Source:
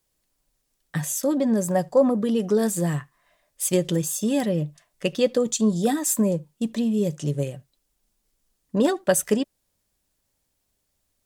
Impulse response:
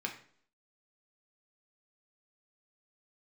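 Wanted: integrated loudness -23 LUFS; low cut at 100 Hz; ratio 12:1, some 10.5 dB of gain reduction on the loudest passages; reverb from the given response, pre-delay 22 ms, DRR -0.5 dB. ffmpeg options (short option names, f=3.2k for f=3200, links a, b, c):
-filter_complex "[0:a]highpass=100,acompressor=threshold=-24dB:ratio=12,asplit=2[a][b];[1:a]atrim=start_sample=2205,adelay=22[c];[b][c]afir=irnorm=-1:irlink=0,volume=-2dB[d];[a][d]amix=inputs=2:normalize=0,volume=3dB"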